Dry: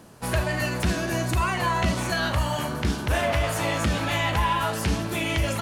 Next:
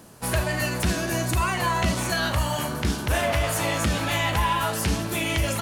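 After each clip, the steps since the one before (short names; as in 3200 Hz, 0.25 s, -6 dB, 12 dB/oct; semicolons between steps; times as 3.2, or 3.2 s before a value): high shelf 6600 Hz +7.5 dB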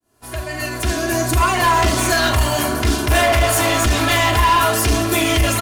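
opening faded in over 1.81 s; hard clip -23 dBFS, distortion -11 dB; comb 2.9 ms, depth 81%; gain +8.5 dB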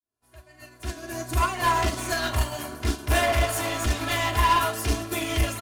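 upward expander 2.5:1, over -28 dBFS; gain -4.5 dB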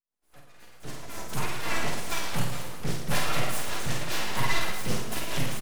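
rotary speaker horn 5 Hz; full-wave rectifier; on a send: reverse bouncing-ball echo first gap 50 ms, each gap 1.25×, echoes 5; on the sum: gain -1.5 dB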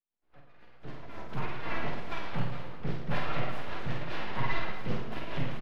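air absorption 350 m; gain -2.5 dB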